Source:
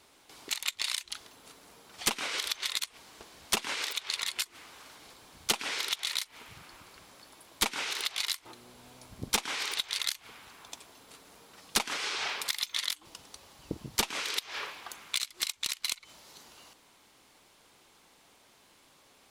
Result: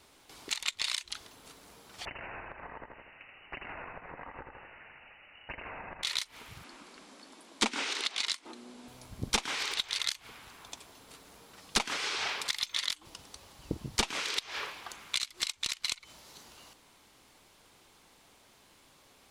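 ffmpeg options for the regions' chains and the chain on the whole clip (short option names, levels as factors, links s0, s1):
-filter_complex "[0:a]asettb=1/sr,asplit=3[s0][s1][s2];[s0]atrim=end=2.054[s3];[s1]atrim=start=2.05:end=6.03,asetpts=PTS-STARTPTS,afade=t=in:d=0.004:c=qsin,afade=t=out:st=3.976:d=0.004:c=qsin,aecho=1:1:81|162|243|324|405|486:0.422|0.223|0.118|0.0628|0.0333|0.0176,atrim=end_sample=175518,lowpass=f=2600:t=q:w=0.5098,lowpass=f=2600:t=q:w=0.6013,lowpass=f=2600:t=q:w=0.9,lowpass=f=2600:t=q:w=2.563,afreqshift=-3000,acompressor=threshold=0.00562:ratio=2:attack=3.2:release=140:knee=1:detection=peak[s4];[s2]atrim=start=6.026[s5];[s3][s4]acrossfade=d=0.004:c1=hsin:c2=qsin[s6];[s6][s5]acrossfade=d=0.004:c1=qsin:c2=hsin,asettb=1/sr,asplit=3[s7][s8][s9];[s7]atrim=end=6.644[s10];[s8]atrim=start=6.64:end=8.88,asetpts=PTS-STARTPTS,afade=t=in:d=0.004:c=qsin,afade=t=out:st=2.236:d=0.004:c=qsin,lowpass=f=9800:w=0.5412,lowpass=f=9800:w=1.3066,lowshelf=f=160:t=q:w=3:g=-13.5[s11];[s9]atrim=start=8.876[s12];[s10][s11]acrossfade=d=0.004:c1=hsin:c2=qsin[s13];[s13][s12]acrossfade=d=0.004:c1=qsin:c2=hsin,acrossover=split=9500[s14][s15];[s15]acompressor=threshold=0.00158:ratio=4:attack=1:release=60[s16];[s14][s16]amix=inputs=2:normalize=0,lowshelf=f=120:g=7"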